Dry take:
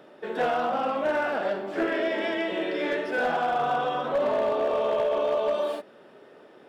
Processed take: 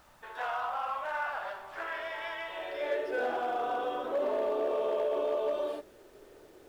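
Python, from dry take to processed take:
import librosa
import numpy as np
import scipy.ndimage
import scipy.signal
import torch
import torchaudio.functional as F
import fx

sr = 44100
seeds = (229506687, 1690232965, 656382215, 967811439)

y = fx.filter_sweep_highpass(x, sr, from_hz=1000.0, to_hz=340.0, start_s=2.47, end_s=3.27, q=2.5)
y = fx.dmg_noise_colour(y, sr, seeds[0], colour='pink', level_db=-55.0)
y = F.gain(torch.from_numpy(y), -9.0).numpy()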